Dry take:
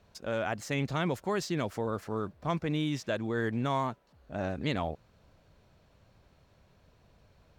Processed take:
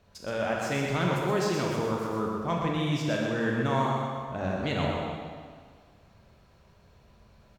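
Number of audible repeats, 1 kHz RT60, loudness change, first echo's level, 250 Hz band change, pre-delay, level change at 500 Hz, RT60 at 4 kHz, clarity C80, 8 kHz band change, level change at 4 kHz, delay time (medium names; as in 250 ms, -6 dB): 1, 1.9 s, +4.0 dB, -5.5 dB, +3.5 dB, 19 ms, +4.5 dB, 1.6 s, 0.0 dB, +4.0 dB, +4.0 dB, 125 ms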